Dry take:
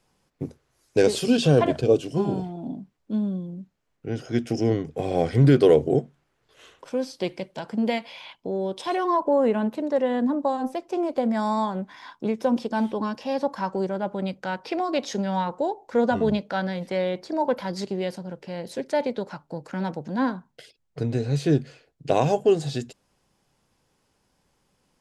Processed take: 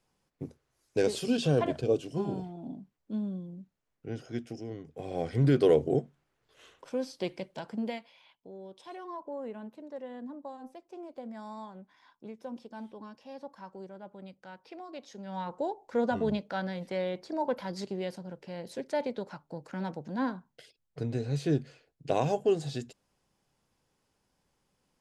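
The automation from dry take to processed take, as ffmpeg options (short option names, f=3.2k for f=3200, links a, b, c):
-af "volume=16.5dB,afade=t=out:st=4.11:d=0.56:silence=0.281838,afade=t=in:st=4.67:d=1.06:silence=0.223872,afade=t=out:st=7.6:d=0.52:silence=0.237137,afade=t=in:st=15.19:d=0.41:silence=0.266073"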